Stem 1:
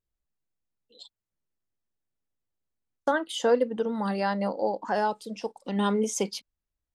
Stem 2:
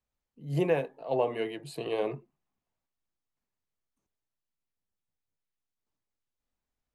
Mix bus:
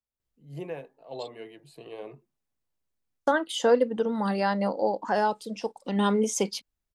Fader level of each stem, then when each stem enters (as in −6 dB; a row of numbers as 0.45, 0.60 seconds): +1.5, −10.0 decibels; 0.20, 0.00 seconds